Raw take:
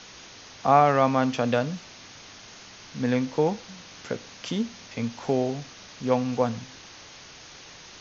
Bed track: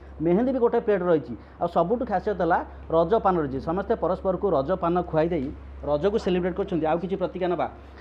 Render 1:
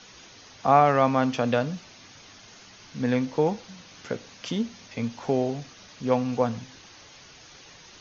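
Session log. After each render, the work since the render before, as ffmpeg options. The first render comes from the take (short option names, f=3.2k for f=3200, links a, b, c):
-af "afftdn=nr=6:nf=-47"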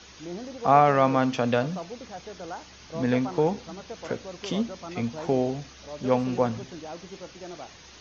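-filter_complex "[1:a]volume=-15.5dB[a];[0:a][a]amix=inputs=2:normalize=0"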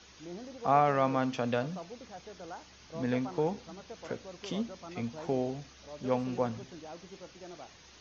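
-af "volume=-7dB"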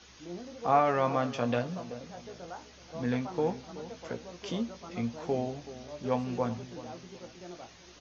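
-filter_complex "[0:a]asplit=2[a][b];[b]adelay=17,volume=-7dB[c];[a][c]amix=inputs=2:normalize=0,asplit=2[d][e];[e]adelay=378,lowpass=f=1.1k:p=1,volume=-14dB,asplit=2[f][g];[g]adelay=378,lowpass=f=1.1k:p=1,volume=0.36,asplit=2[h][i];[i]adelay=378,lowpass=f=1.1k:p=1,volume=0.36[j];[d][f][h][j]amix=inputs=4:normalize=0"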